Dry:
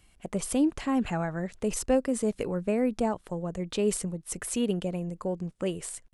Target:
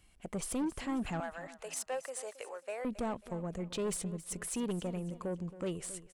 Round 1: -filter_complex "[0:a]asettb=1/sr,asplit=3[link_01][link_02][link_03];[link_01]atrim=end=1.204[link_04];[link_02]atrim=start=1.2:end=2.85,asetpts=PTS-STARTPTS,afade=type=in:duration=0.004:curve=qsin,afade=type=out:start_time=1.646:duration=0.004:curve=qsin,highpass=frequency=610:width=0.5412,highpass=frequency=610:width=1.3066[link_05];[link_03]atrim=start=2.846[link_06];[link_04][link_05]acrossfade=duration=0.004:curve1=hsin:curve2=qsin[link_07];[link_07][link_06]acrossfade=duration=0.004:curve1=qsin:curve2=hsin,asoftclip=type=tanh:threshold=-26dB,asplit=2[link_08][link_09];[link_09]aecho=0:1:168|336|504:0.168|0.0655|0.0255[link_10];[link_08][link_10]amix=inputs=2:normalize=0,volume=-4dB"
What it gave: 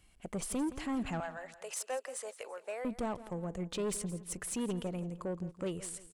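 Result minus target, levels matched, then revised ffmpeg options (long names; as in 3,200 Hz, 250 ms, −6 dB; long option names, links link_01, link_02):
echo 103 ms early
-filter_complex "[0:a]asettb=1/sr,asplit=3[link_01][link_02][link_03];[link_01]atrim=end=1.204[link_04];[link_02]atrim=start=1.2:end=2.85,asetpts=PTS-STARTPTS,afade=type=in:duration=0.004:curve=qsin,afade=type=out:start_time=1.646:duration=0.004:curve=qsin,highpass=frequency=610:width=0.5412,highpass=frequency=610:width=1.3066[link_05];[link_03]atrim=start=2.846[link_06];[link_04][link_05]acrossfade=duration=0.004:curve1=hsin:curve2=qsin[link_07];[link_07][link_06]acrossfade=duration=0.004:curve1=qsin:curve2=hsin,asoftclip=type=tanh:threshold=-26dB,asplit=2[link_08][link_09];[link_09]aecho=0:1:271|542|813:0.168|0.0655|0.0255[link_10];[link_08][link_10]amix=inputs=2:normalize=0,volume=-4dB"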